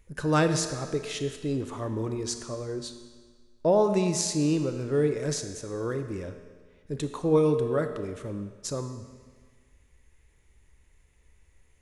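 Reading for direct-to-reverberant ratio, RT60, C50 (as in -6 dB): 7.5 dB, 1.6 s, 8.5 dB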